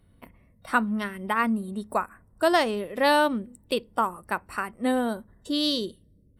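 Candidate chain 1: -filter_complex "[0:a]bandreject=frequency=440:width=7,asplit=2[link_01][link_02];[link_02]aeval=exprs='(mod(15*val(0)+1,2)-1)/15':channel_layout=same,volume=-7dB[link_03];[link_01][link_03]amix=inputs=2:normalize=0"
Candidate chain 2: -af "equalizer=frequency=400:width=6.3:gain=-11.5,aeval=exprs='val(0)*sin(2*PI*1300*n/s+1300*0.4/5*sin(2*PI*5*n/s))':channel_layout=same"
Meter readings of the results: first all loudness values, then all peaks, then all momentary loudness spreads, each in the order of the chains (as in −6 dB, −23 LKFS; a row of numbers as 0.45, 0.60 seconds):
−26.0, −28.5 LKFS; −8.0, −9.0 dBFS; 9, 10 LU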